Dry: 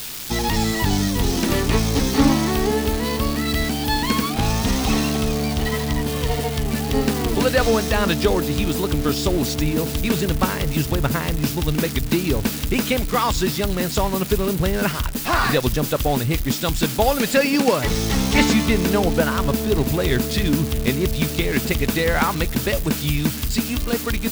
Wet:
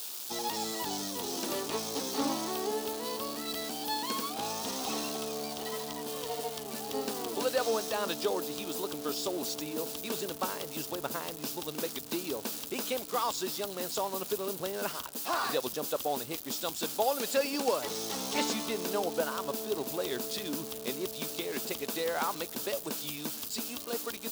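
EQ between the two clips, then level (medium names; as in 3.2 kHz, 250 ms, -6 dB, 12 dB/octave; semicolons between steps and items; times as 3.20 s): high-pass 440 Hz 12 dB/octave; peaking EQ 2 kHz -10.5 dB 1 oct; -8.0 dB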